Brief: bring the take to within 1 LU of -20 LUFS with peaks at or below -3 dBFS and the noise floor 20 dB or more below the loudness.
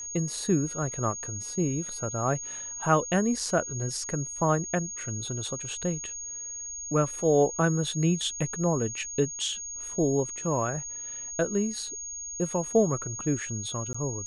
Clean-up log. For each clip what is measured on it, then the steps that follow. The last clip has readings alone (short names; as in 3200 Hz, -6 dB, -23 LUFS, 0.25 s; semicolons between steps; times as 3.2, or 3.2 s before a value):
dropouts 1; longest dropout 15 ms; steady tone 6600 Hz; tone level -35 dBFS; loudness -28.5 LUFS; peak -9.0 dBFS; loudness target -20.0 LUFS
-> interpolate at 13.93, 15 ms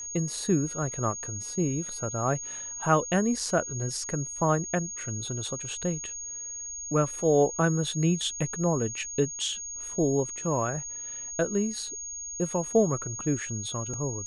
dropouts 0; steady tone 6600 Hz; tone level -35 dBFS
-> notch 6600 Hz, Q 30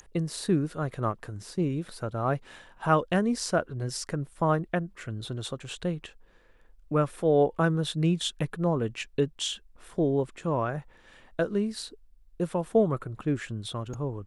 steady tone none; loudness -29.0 LUFS; peak -9.0 dBFS; loudness target -20.0 LUFS
-> gain +9 dB; limiter -3 dBFS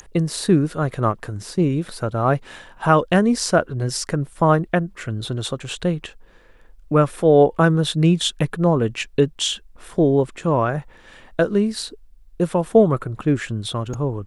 loudness -20.5 LUFS; peak -3.0 dBFS; noise floor -48 dBFS